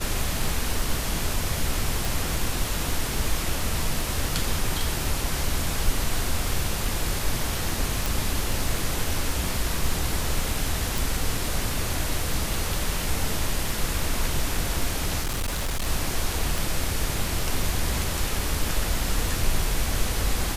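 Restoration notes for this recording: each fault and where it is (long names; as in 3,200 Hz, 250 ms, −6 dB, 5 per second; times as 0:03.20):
surface crackle 25 per second −30 dBFS
0:02.05: click
0:08.06: click
0:10.98: click
0:15.20–0:15.87: clipping −23 dBFS
0:16.58: click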